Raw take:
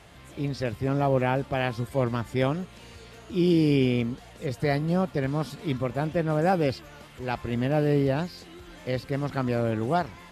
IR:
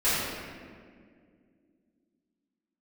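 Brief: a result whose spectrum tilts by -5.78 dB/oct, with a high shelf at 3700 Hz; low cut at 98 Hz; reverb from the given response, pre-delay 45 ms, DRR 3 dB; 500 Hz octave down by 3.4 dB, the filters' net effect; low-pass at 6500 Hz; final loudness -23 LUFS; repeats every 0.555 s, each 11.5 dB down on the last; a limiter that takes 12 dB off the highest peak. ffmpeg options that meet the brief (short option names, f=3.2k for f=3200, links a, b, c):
-filter_complex "[0:a]highpass=98,lowpass=6.5k,equalizer=f=500:t=o:g=-4.5,highshelf=f=3.7k:g=8,alimiter=limit=-23.5dB:level=0:latency=1,aecho=1:1:555|1110|1665:0.266|0.0718|0.0194,asplit=2[a][b];[1:a]atrim=start_sample=2205,adelay=45[c];[b][c]afir=irnorm=-1:irlink=0,volume=-17.5dB[d];[a][d]amix=inputs=2:normalize=0,volume=9dB"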